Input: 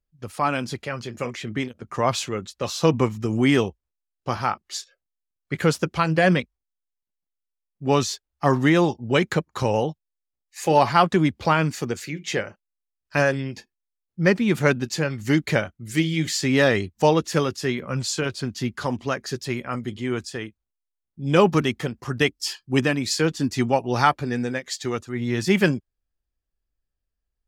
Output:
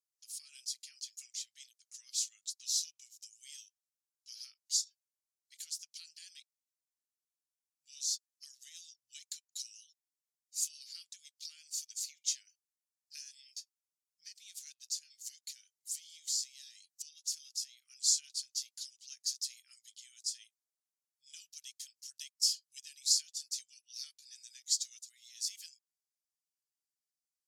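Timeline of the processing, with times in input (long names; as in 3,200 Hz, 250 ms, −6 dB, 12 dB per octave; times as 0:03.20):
0:14.86–0:17.82: downward compressor 3 to 1, threshold −33 dBFS
whole clip: high-shelf EQ 12,000 Hz −11.5 dB; downward compressor 6 to 1, threshold −25 dBFS; inverse Chebyshev high-pass filter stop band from 910 Hz, stop band 80 dB; level +5.5 dB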